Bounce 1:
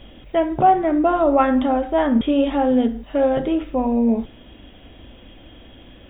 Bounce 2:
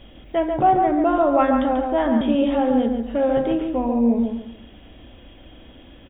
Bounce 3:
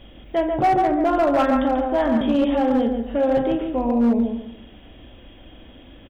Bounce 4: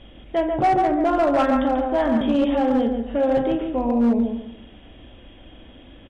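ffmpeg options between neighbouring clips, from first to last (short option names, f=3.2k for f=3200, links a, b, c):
-filter_complex "[0:a]asplit=2[a][b];[b]adelay=140,lowpass=f=2k:p=1,volume=-4dB,asplit=2[c][d];[d]adelay=140,lowpass=f=2k:p=1,volume=0.31,asplit=2[e][f];[f]adelay=140,lowpass=f=2k:p=1,volume=0.31,asplit=2[g][h];[h]adelay=140,lowpass=f=2k:p=1,volume=0.31[i];[a][c][e][g][i]amix=inputs=5:normalize=0,volume=-2.5dB"
-filter_complex "[0:a]asplit=2[a][b];[b]adelay=42,volume=-11.5dB[c];[a][c]amix=inputs=2:normalize=0,asoftclip=type=hard:threshold=-13dB"
-ar 24000 -c:a libmp3lame -b:a 80k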